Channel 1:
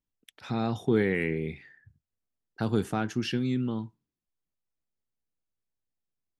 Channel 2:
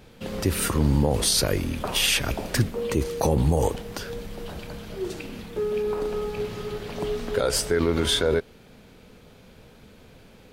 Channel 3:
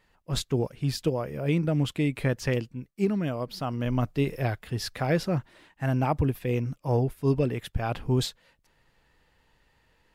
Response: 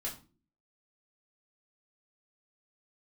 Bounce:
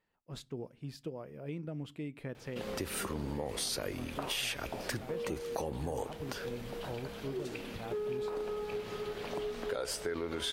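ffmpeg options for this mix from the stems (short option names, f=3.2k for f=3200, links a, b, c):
-filter_complex "[0:a]adelay=2350,volume=-16dB[a];[1:a]adelay=2350,volume=-2dB[b];[2:a]equalizer=f=170:t=o:w=2.6:g=9,volume=-16dB,asplit=2[c][d];[d]volume=-19.5dB[e];[3:a]atrim=start_sample=2205[f];[e][f]afir=irnorm=-1:irlink=0[g];[a][b][c][g]amix=inputs=4:normalize=0,bass=f=250:g=-9,treble=f=4k:g=-3,acompressor=threshold=-36dB:ratio=3"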